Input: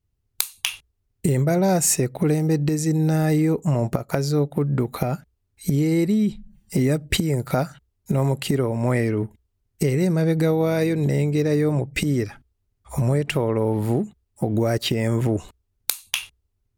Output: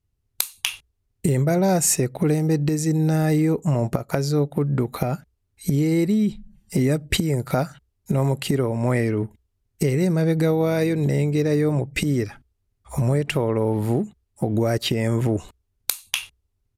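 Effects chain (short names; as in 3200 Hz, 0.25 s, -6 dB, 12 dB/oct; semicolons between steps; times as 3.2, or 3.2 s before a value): downsampling 32000 Hz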